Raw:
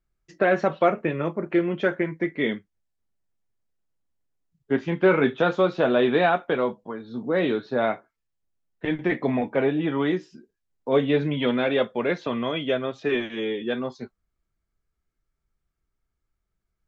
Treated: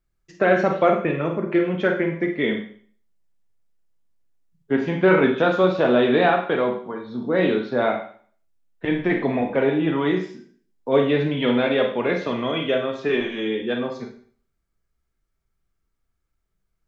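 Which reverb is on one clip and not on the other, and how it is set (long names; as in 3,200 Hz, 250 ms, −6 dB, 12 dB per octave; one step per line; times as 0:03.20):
four-comb reverb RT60 0.49 s, combs from 33 ms, DRR 4 dB
level +1.5 dB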